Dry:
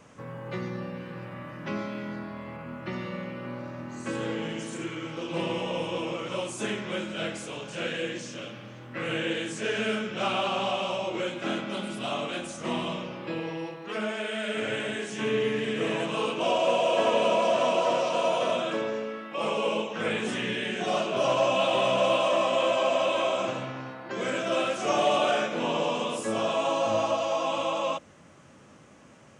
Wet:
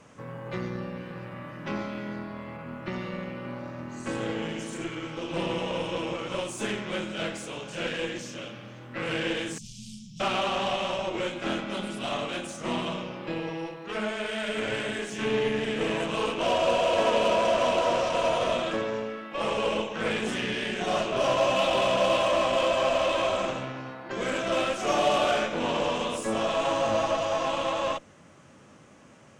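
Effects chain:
harmonic generator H 8 −23 dB, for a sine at −12 dBFS
0:09.58–0:10.20: elliptic band-stop filter 160–4,800 Hz, stop band 50 dB

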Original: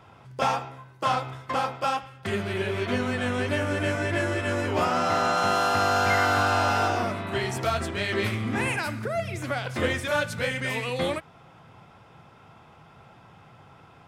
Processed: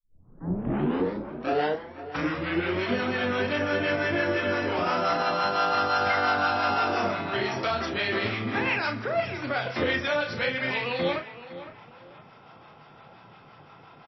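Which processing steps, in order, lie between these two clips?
turntable start at the beginning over 2.93 s
parametric band 60 Hz −13.5 dB 1.6 octaves
brickwall limiter −18.5 dBFS, peak gain reduction 6.5 dB
two-band tremolo in antiphase 5.8 Hz, depth 50%, crossover 650 Hz
double-tracking delay 34 ms −7 dB
on a send: tape delay 509 ms, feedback 32%, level −13 dB, low-pass 2,500 Hz
on the sum: level +4 dB
MP3 24 kbit/s 16,000 Hz

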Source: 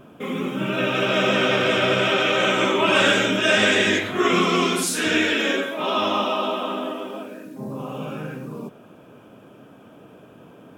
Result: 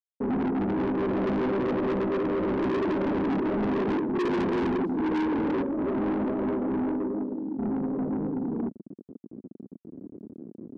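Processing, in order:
hold until the input has moved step −35 dBFS
leveller curve on the samples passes 1
flat-topped band-pass 280 Hz, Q 1.5
soft clipping −32 dBFS, distortion −5 dB
level +7.5 dB

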